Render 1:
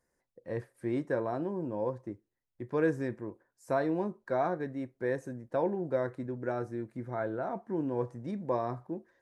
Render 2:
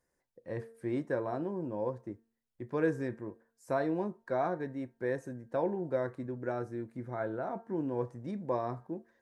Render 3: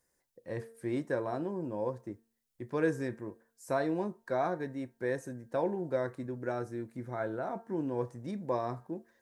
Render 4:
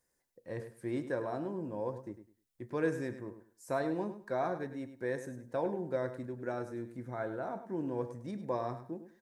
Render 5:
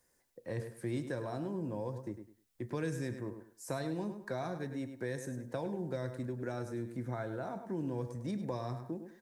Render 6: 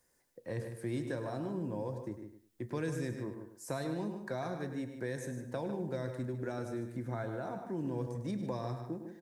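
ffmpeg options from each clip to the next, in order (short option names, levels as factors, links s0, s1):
-af "bandreject=f=227.7:t=h:w=4,bandreject=f=455.4:t=h:w=4,bandreject=f=683.1:t=h:w=4,bandreject=f=910.8:t=h:w=4,bandreject=f=1138.5:t=h:w=4,bandreject=f=1366.2:t=h:w=4,bandreject=f=1593.9:t=h:w=4,bandreject=f=1821.6:t=h:w=4,volume=0.841"
-af "highshelf=f=3800:g=9.5"
-af "aecho=1:1:102|204|306:0.266|0.0559|0.0117,volume=0.75"
-filter_complex "[0:a]acrossover=split=180|3000[s0][s1][s2];[s1]acompressor=threshold=0.00562:ratio=4[s3];[s0][s3][s2]amix=inputs=3:normalize=0,volume=2"
-filter_complex "[0:a]asplit=2[s0][s1];[s1]adelay=151.6,volume=0.355,highshelf=f=4000:g=-3.41[s2];[s0][s2]amix=inputs=2:normalize=0"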